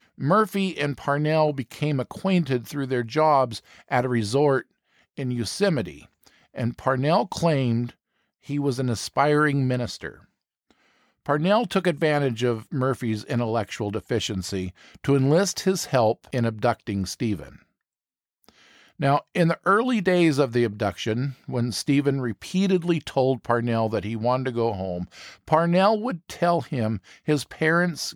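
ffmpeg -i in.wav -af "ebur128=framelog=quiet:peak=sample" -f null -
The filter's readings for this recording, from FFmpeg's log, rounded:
Integrated loudness:
  I:         -23.9 LUFS
  Threshold: -34.5 LUFS
Loudness range:
  LRA:         2.9 LU
  Threshold: -44.7 LUFS
  LRA low:   -26.2 LUFS
  LRA high:  -23.3 LUFS
Sample peak:
  Peak:       -6.2 dBFS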